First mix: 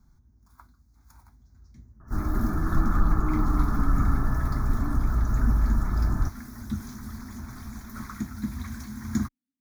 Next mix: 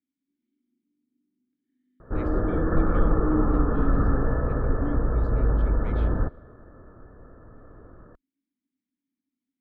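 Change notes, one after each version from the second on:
first sound: muted
master: remove phaser with its sweep stopped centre 1,200 Hz, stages 4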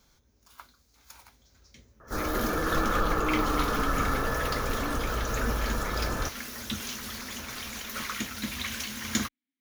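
first sound: unmuted
master: add tilt shelving filter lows −9.5 dB, about 680 Hz

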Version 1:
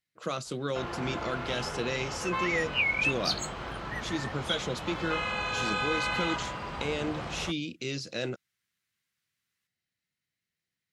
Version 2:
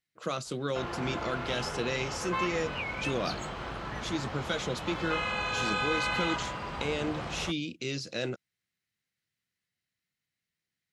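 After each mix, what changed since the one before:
second sound −10.5 dB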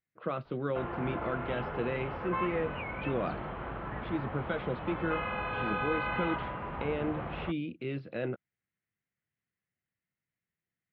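master: add Bessel low-pass filter 1,700 Hz, order 8

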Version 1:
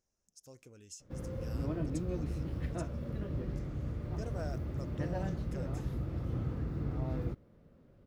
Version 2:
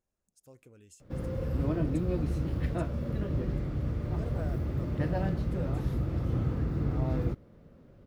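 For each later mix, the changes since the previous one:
speech: add parametric band 5,700 Hz −13.5 dB 0.65 octaves
background +6.0 dB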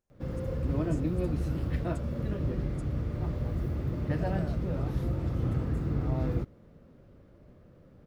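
background: entry −0.90 s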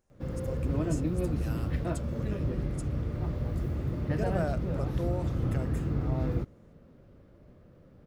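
speech +10.5 dB

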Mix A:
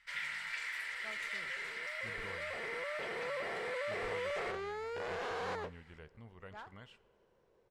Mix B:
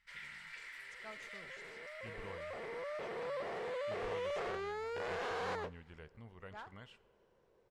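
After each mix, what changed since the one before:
first sound −9.5 dB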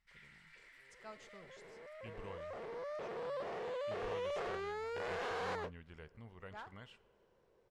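first sound −11.0 dB
second sound: send off

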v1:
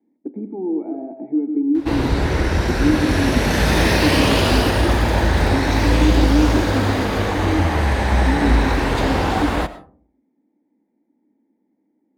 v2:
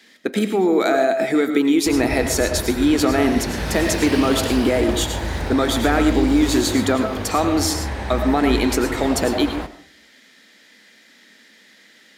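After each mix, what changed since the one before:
speech: remove formant resonators in series u
background −8.5 dB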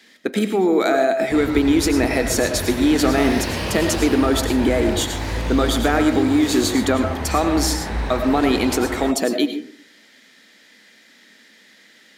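background: entry −0.55 s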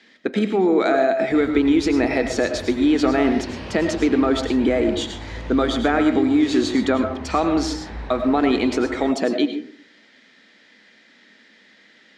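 background −8.5 dB
master: add high-frequency loss of the air 130 metres

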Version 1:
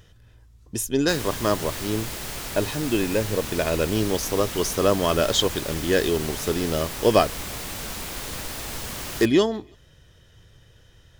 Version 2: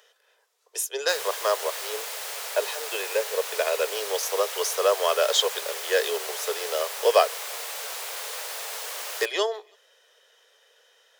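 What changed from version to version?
master: add Butterworth high-pass 430 Hz 72 dB per octave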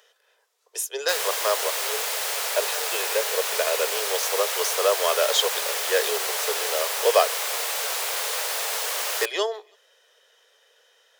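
background +7.0 dB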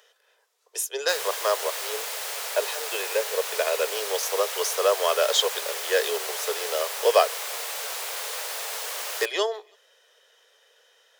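background −5.0 dB

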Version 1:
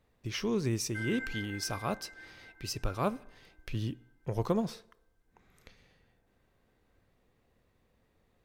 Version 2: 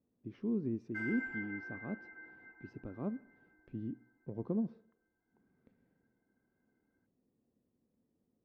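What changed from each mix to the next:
speech: add resonant band-pass 250 Hz, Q 2.2
master: add high-frequency loss of the air 130 metres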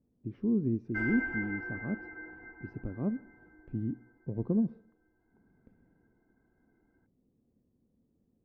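background +8.5 dB
master: add spectral tilt −3 dB per octave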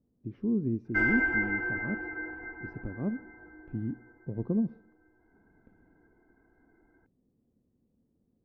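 background +8.0 dB

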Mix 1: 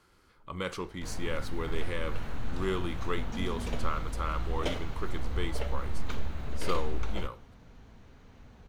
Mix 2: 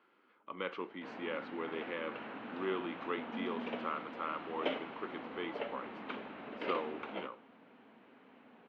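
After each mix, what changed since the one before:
speech −3.0 dB
master: add Chebyshev band-pass filter 240–2,900 Hz, order 3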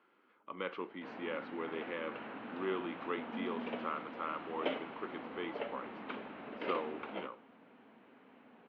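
master: add high-frequency loss of the air 94 metres

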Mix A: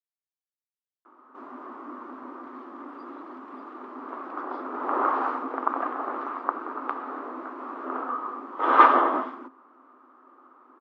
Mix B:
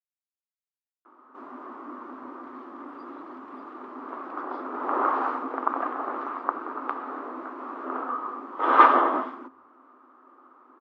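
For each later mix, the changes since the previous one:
master: remove linear-phase brick-wall high-pass 170 Hz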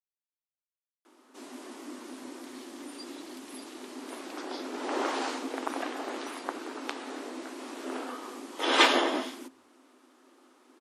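master: remove low-pass with resonance 1,200 Hz, resonance Q 5.2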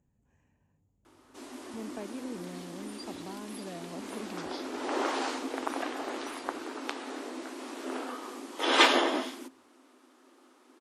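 speech: unmuted

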